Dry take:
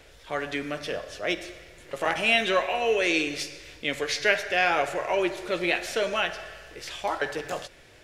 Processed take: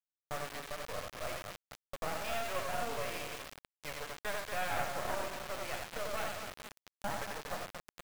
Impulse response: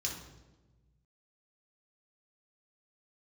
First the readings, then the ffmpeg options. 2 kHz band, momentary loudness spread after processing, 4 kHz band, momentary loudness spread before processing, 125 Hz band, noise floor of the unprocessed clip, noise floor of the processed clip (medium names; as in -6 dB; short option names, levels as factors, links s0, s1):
-14.5 dB, 10 LU, -14.0 dB, 14 LU, -4.5 dB, -53 dBFS, under -85 dBFS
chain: -af "lowpass=1200,acompressor=threshold=0.00708:ratio=2.5,agate=range=0.112:threshold=0.00708:ratio=16:detection=peak,highpass=f=580:w=0.5412,highpass=f=580:w=1.3066,aecho=1:1:90|234|464.4|833|1423:0.631|0.398|0.251|0.158|0.1,acrusher=bits=5:dc=4:mix=0:aa=0.000001,volume=2.37"